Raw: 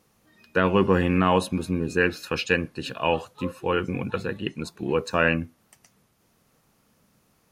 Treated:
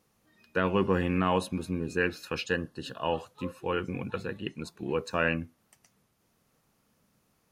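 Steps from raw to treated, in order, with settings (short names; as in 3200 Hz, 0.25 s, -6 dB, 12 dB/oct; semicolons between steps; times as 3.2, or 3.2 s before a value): 2.46–3.17 Butterworth band-stop 2300 Hz, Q 3.1; gain -6 dB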